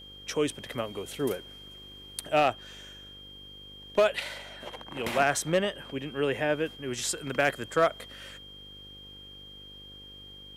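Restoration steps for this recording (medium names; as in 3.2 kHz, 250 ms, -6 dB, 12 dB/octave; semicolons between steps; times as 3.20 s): clip repair -15 dBFS; de-hum 49.5 Hz, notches 11; band-stop 3.2 kHz, Q 30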